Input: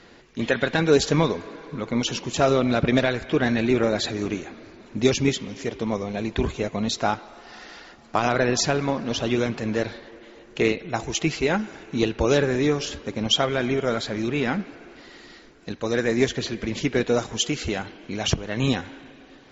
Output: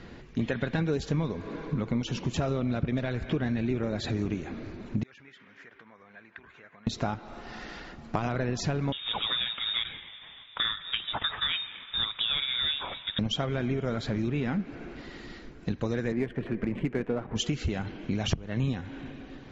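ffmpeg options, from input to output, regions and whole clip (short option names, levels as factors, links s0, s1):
-filter_complex "[0:a]asettb=1/sr,asplit=3[s0][s1][s2];[s0]atrim=end=5.034[s3];[s1]atrim=start=5.03:end=6.87,asetpts=PTS-STARTPTS,afade=t=in:d=0.004:c=qsin,afade=t=out:st=1.836:d=0.004:c=qsin,acompressor=threshold=0.0251:ratio=4:attack=3.2:release=140:knee=1:detection=peak,bandpass=f=1600:t=q:w=3.7[s4];[s2]atrim=start=6.866[s5];[s3][s4]acrossfade=d=0.004:c1=hsin:c2=qsin[s6];[s6][s5]acrossfade=d=0.004:c1=qsin:c2=hsin,asettb=1/sr,asplit=3[s7][s8][s9];[s7]atrim=end=8.924[s10];[s8]atrim=start=8.92:end=13.19,asetpts=PTS-STARTPTS,afade=t=in:d=0.004:c=qsin,afade=t=out:st=4.266:d=0.004:c=qsin,acrusher=bits=4:mode=log:mix=0:aa=0.000001,highpass=f=160:p=1,lowpass=f=3300:t=q:w=0.5098,lowpass=f=3300:t=q:w=0.6013,lowpass=f=3300:t=q:w=0.9,lowpass=f=3300:t=q:w=2.563,afreqshift=-3900[s11];[s9]atrim=start=13.186[s12];[s10][s11]acrossfade=d=0.004:c1=hsin:c2=qsin[s13];[s13][s12]acrossfade=d=0.004:c1=qsin:c2=hsin,asettb=1/sr,asplit=3[s14][s15][s16];[s14]atrim=end=16.124[s17];[s15]atrim=start=16.12:end=17.36,asetpts=PTS-STARTPTS,afade=t=in:d=0.004:c=qsin,afade=t=out:st=1.236:d=0.004:c=qsin,lowpass=f=2700:w=0.5412,lowpass=f=2700:w=1.3066,adynamicsmooth=sensitivity=4:basefreq=1700,equalizer=f=71:w=1:g=-15[s18];[s16]atrim=start=17.356[s19];[s17][s18]acrossfade=d=0.004:c1=hsin:c2=qsin[s20];[s20][s19]acrossfade=d=0.004:c1=qsin:c2=hsin,bass=f=250:g=11,treble=f=4000:g=-6,acompressor=threshold=0.0501:ratio=6"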